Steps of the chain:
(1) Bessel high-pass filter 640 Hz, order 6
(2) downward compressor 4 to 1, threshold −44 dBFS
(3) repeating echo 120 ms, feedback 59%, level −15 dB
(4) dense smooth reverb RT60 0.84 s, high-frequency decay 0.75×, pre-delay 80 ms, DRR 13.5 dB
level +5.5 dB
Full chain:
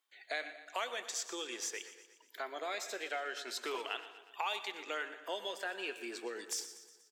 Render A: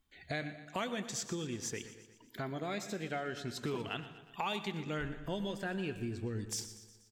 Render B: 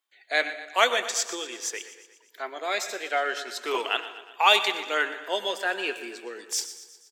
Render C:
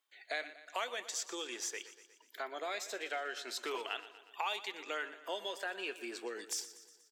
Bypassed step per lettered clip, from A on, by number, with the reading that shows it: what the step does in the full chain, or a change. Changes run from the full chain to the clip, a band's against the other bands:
1, 250 Hz band +13.0 dB
2, average gain reduction 9.5 dB
4, echo-to-direct ratio −10.5 dB to −13.0 dB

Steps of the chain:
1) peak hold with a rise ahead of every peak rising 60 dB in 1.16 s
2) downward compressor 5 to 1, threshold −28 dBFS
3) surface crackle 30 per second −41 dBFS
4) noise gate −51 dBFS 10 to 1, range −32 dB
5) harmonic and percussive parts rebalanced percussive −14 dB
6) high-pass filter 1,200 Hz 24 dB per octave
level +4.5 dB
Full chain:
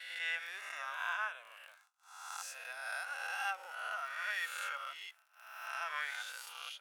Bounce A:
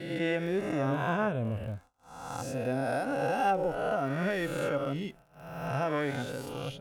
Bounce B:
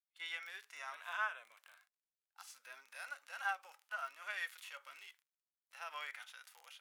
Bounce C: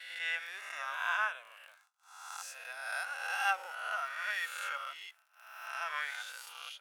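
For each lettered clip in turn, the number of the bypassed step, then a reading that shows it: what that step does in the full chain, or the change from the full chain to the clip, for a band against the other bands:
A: 6, 500 Hz band +25.0 dB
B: 1, 8 kHz band −4.5 dB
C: 2, average gain reduction 1.5 dB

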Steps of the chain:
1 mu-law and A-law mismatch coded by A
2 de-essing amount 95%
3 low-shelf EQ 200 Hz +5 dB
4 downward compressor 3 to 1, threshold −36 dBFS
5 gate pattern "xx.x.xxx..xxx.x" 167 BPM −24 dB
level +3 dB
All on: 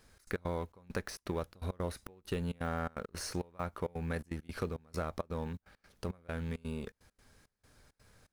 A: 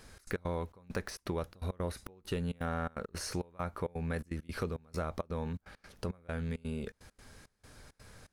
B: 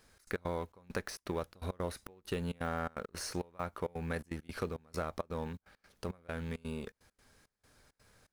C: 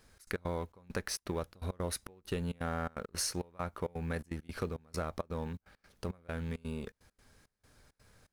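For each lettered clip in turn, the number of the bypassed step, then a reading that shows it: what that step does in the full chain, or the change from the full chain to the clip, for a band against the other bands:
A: 1, distortion level −19 dB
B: 3, 125 Hz band −3.0 dB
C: 2, change in crest factor +3.0 dB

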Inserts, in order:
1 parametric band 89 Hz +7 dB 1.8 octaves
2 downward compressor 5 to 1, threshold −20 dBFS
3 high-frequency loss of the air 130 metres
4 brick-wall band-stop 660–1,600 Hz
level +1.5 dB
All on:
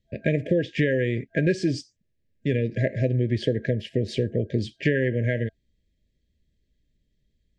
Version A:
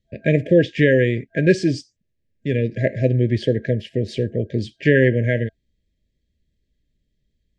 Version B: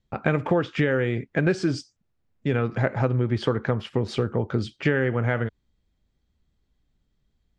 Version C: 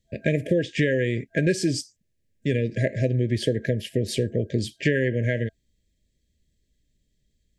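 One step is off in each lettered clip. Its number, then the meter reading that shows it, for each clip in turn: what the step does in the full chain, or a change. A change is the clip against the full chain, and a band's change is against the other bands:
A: 2, average gain reduction 4.0 dB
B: 4, 2 kHz band +2.0 dB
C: 3, 4 kHz band +3.5 dB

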